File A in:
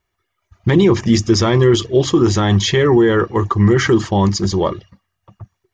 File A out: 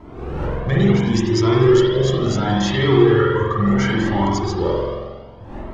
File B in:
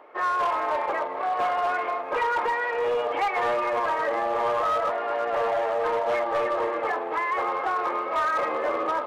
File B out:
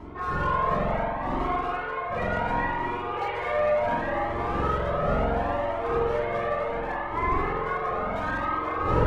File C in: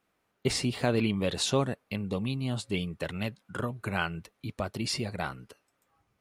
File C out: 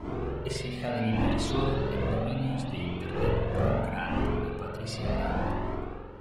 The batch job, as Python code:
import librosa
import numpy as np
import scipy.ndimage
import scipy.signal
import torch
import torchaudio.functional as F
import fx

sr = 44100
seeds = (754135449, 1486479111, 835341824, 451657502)

y = fx.dmg_wind(x, sr, seeds[0], corner_hz=470.0, level_db=-29.0)
y = fx.rev_spring(y, sr, rt60_s=1.7, pass_ms=(45,), chirp_ms=45, drr_db=-4.5)
y = fx.comb_cascade(y, sr, direction='rising', hz=0.7)
y = F.gain(torch.from_numpy(y), -4.0).numpy()